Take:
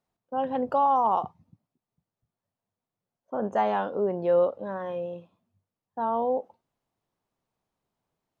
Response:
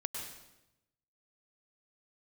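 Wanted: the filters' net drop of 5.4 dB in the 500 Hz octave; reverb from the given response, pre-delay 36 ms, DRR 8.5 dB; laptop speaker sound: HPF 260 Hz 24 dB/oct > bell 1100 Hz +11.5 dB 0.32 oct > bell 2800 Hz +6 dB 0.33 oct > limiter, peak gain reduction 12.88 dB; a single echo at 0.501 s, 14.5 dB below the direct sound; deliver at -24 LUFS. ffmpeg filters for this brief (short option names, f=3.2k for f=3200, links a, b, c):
-filter_complex "[0:a]equalizer=f=500:t=o:g=-6.5,aecho=1:1:501:0.188,asplit=2[a][b];[1:a]atrim=start_sample=2205,adelay=36[c];[b][c]afir=irnorm=-1:irlink=0,volume=-9.5dB[d];[a][d]amix=inputs=2:normalize=0,highpass=f=260:w=0.5412,highpass=f=260:w=1.3066,equalizer=f=1.1k:t=o:w=0.32:g=11.5,equalizer=f=2.8k:t=o:w=0.33:g=6,volume=8dB,alimiter=limit=-13.5dB:level=0:latency=1"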